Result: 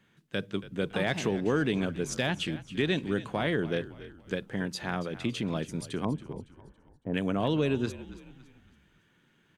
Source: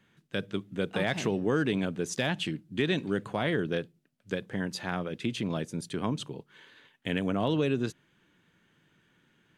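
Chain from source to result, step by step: 6.05–7.14 LPF 1000 Hz 24 dB/oct; frequency-shifting echo 0.279 s, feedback 41%, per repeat -52 Hz, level -15.5 dB

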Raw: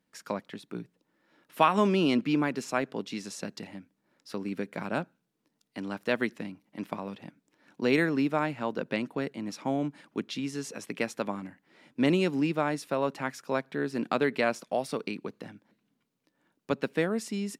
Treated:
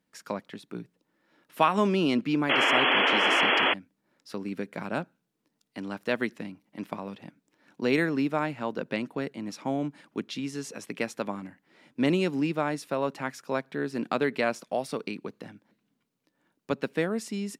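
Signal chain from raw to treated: painted sound noise, 2.49–3.74, 240–3400 Hz -23 dBFS

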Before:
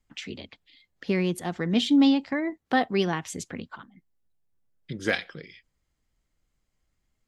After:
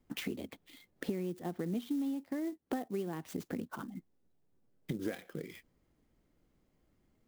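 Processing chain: bell 310 Hz +14.5 dB 2.9 oct; compressor 8:1, threshold -33 dBFS, peak gain reduction 29 dB; clock jitter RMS 0.028 ms; gain -2 dB

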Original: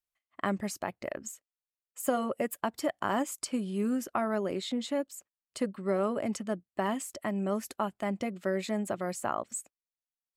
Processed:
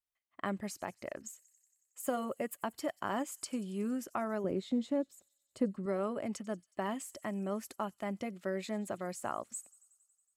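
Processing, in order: 4.44–5.86 tilt shelf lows +7.5 dB, about 820 Hz; thin delay 92 ms, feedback 74%, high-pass 5200 Hz, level -18 dB; gain -5.5 dB

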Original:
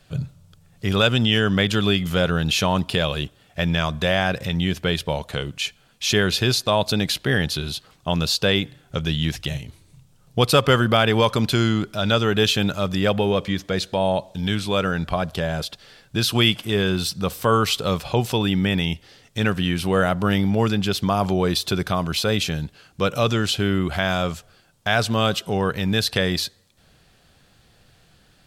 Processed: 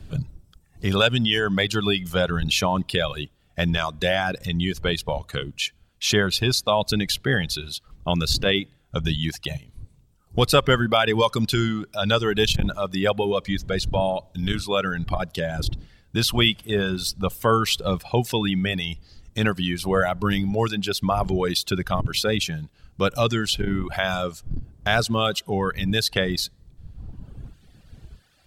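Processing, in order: wind noise 97 Hz -32 dBFS; reverb removal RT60 1.6 s; core saturation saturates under 130 Hz

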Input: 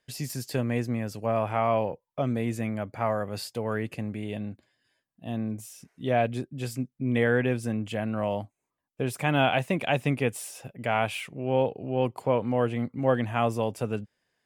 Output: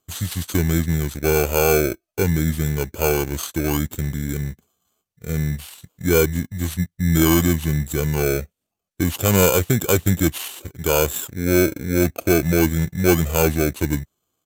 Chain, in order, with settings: FFT order left unsorted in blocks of 16 samples; pitch shift -6.5 st; sample leveller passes 1; gain +5 dB

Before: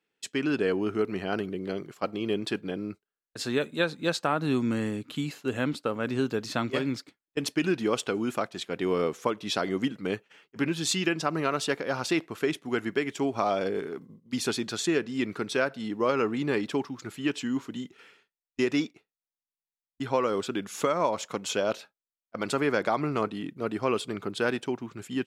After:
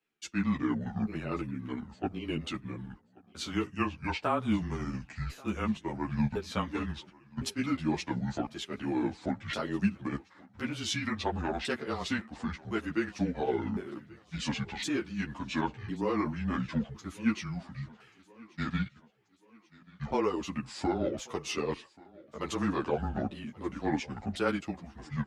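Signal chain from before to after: repeated pitch sweeps -10 st, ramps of 1.059 s; on a send: thinning echo 1.134 s, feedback 53%, high-pass 170 Hz, level -22.5 dB; on the sum: frequency shift -22 Hz; ensemble effect

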